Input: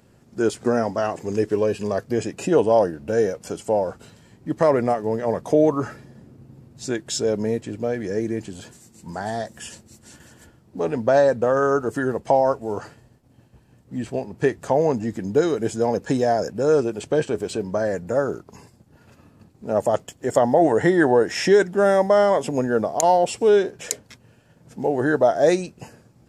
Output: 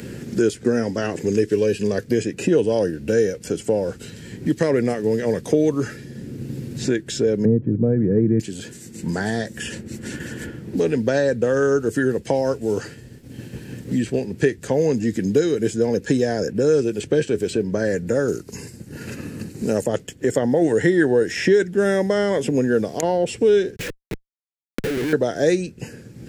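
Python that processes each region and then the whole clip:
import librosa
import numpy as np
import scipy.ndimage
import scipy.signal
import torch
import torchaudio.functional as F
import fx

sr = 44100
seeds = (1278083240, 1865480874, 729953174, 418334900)

y = fx.chain(x, sr, fx.cheby1_lowpass(hz=1100.0, order=3),
    fx.peak_eq(hz=130.0, db=14.5, octaves=2.0), at=(7.45, 8.4))
y = fx.chain(y, sr, fx.peak_eq(hz=9000.0, db=10.0, octaves=2.1),
    fx.notch(hz=3400.0, q=9.2), at=(18.28, 19.84))
y = fx.chain(y, sr, fx.auto_swell(attack_ms=384.0),
    fx.schmitt(flips_db=-39.5), at=(23.76, 25.13))
y = fx.band_shelf(y, sr, hz=880.0, db=-13.0, octaves=1.3)
y = fx.band_squash(y, sr, depth_pct=70)
y = F.gain(torch.from_numpy(y), 3.0).numpy()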